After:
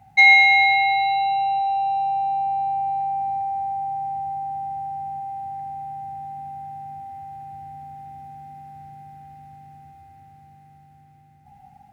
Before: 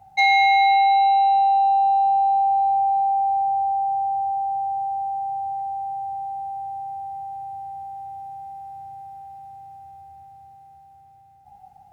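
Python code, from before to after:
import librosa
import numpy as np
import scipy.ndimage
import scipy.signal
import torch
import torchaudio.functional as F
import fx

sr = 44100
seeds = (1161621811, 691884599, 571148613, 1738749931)

y = fx.graphic_eq(x, sr, hz=(125, 250, 500, 1000, 2000), db=(4, 9, -7, -3, 9))
y = fx.echo_filtered(y, sr, ms=81, feedback_pct=67, hz=2100.0, wet_db=-5.5)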